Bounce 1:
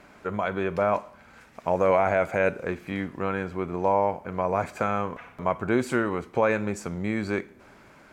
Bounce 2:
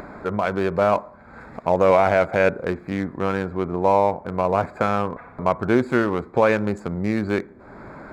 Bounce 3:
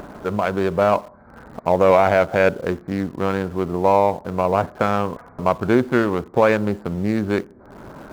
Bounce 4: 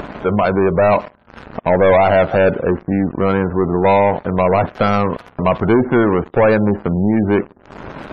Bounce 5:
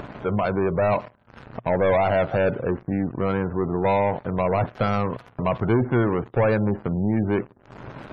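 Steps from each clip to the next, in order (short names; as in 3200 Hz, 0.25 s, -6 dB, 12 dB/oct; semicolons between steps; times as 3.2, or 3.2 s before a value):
Wiener smoothing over 15 samples; upward compressor, threshold -34 dBFS; gain +5.5 dB
Wiener smoothing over 15 samples; in parallel at -11.5 dB: requantised 6-bit, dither none
sample leveller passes 3; spectral gate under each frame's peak -30 dB strong; gain -2.5 dB
bell 120 Hz +11 dB 0.35 oct; gain -8.5 dB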